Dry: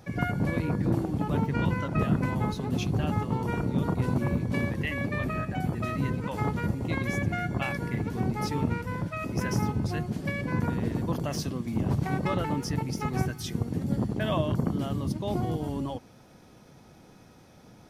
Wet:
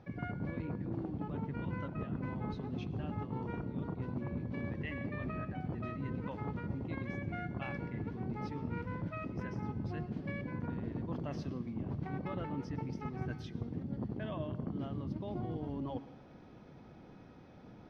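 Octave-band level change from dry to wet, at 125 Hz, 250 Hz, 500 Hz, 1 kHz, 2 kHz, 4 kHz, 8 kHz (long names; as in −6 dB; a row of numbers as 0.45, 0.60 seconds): −11.0 dB, −10.0 dB, −10.5 dB, −11.5 dB, −12.5 dB, −16.5 dB, below −25 dB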